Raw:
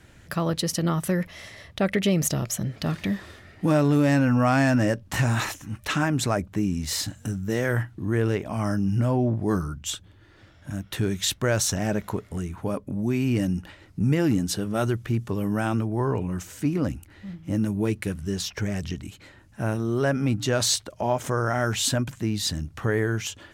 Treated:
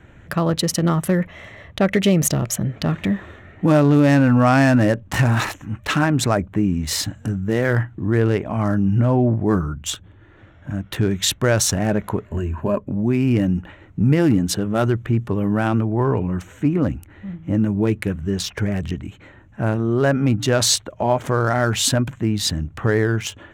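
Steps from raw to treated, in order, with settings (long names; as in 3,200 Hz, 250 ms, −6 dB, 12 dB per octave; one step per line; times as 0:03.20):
adaptive Wiener filter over 9 samples
0:12.25–0:12.81: EQ curve with evenly spaced ripples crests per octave 1.4, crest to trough 12 dB
level +6 dB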